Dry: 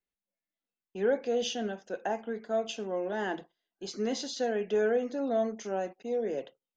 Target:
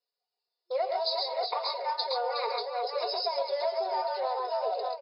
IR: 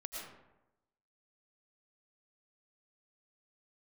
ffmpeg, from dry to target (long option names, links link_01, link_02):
-filter_complex "[0:a]tiltshelf=frequency=1400:gain=5.5,aecho=1:1:5.6:0.84,asplit=2[link_01][link_02];[link_02]aeval=exprs='clip(val(0),-1,0.0316)':channel_layout=same,volume=-8dB[link_03];[link_01][link_03]amix=inputs=2:normalize=0,afftfilt=real='re*between(b*sr/4096,260,3900)':imag='im*between(b*sr/4096,260,3900)':win_size=4096:overlap=0.75,equalizer=frequency=2400:width=5:gain=-13.5,aecho=1:1:152|181|491|792:0.447|0.596|0.355|0.447,flanger=delay=9.2:depth=1.1:regen=68:speed=0.48:shape=sinusoidal,aexciter=amount=9.5:drive=5.4:freq=2600,asetrate=59535,aresample=44100,acompressor=threshold=-27dB:ratio=5"